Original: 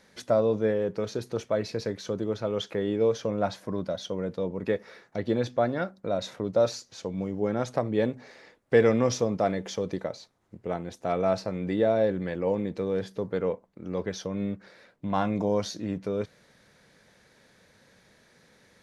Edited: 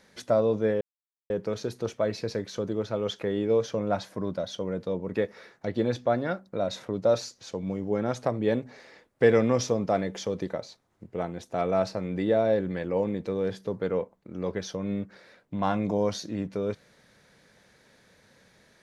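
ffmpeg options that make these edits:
-filter_complex "[0:a]asplit=2[s0][s1];[s0]atrim=end=0.81,asetpts=PTS-STARTPTS,afade=t=out:st=0.806:d=0.004:c=hsin,apad=pad_dur=0.49[s2];[s1]atrim=start=0.81,asetpts=PTS-STARTPTS,afade=t=in:d=0.004:c=hsin[s3];[s2][s3]concat=n=2:v=0:a=1"

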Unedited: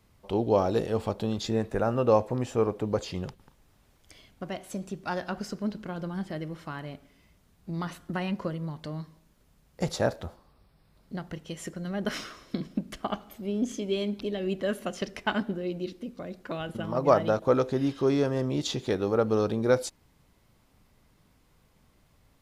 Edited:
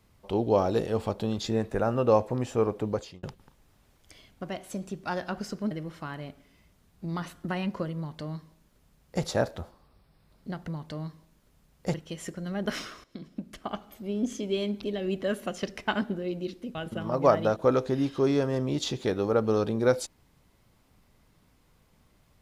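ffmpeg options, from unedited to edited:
-filter_complex "[0:a]asplit=7[s0][s1][s2][s3][s4][s5][s6];[s0]atrim=end=3.23,asetpts=PTS-STARTPTS,afade=t=out:st=2.87:d=0.36[s7];[s1]atrim=start=3.23:end=5.712,asetpts=PTS-STARTPTS,afade=t=in:d=0.004:c=hsin[s8];[s2]atrim=start=6.358:end=11.332[s9];[s3]atrim=start=8.618:end=9.882[s10];[s4]atrim=start=11.328:end=12.43,asetpts=PTS-STARTPTS,afade=t=out:st=1.098:d=0.004:c=hsin:silence=0.211349[s11];[s5]atrim=start=12.43:end=16.142,asetpts=PTS-STARTPTS,afade=t=in:d=1.58:c=qsin:silence=0.211349[s12];[s6]atrim=start=16.578[s13];[s7][s8]concat=n=2:v=0:a=1[s14];[s14][s9]acrossfade=d=0.004:c1=hsin:c2=hsin[s15];[s15][s10]acrossfade=d=0.004:c1=hsin:c2=hsin[s16];[s11][s12]concat=n=2:v=0:a=1[s17];[s16][s17]acrossfade=d=0.004:c1=hsin:c2=hsin[s18];[s18][s13]acrossfade=d=0.004:c1=hsin:c2=hsin"

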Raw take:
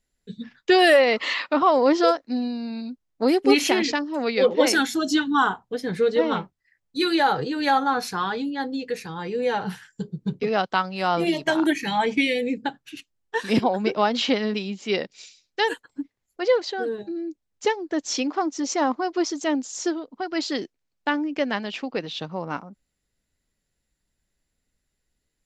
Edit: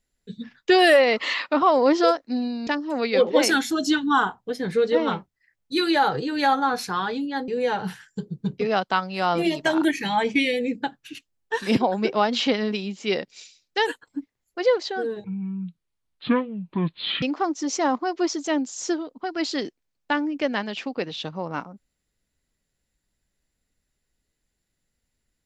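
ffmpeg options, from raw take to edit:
-filter_complex "[0:a]asplit=5[s0][s1][s2][s3][s4];[s0]atrim=end=2.672[s5];[s1]atrim=start=3.908:end=8.722[s6];[s2]atrim=start=9.298:end=17.064[s7];[s3]atrim=start=17.06:end=18.19,asetpts=PTS-STARTPTS,asetrate=25137,aresample=44100,atrim=end_sample=87426,asetpts=PTS-STARTPTS[s8];[s4]atrim=start=18.186[s9];[s5][s6]acrossfade=d=0.004:c1=hsin:c2=hsin[s10];[s10][s7]acrossfade=d=0.004:c1=hsin:c2=hsin[s11];[s11][s8]acrossfade=d=0.004:c1=hsin:c2=hsin[s12];[s12][s9]acrossfade=d=0.004:c1=hsin:c2=hsin"

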